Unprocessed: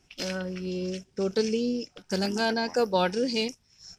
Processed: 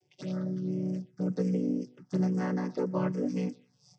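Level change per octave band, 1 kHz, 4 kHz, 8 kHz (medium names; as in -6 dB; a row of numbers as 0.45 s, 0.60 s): -10.5 dB, under -20 dB, under -10 dB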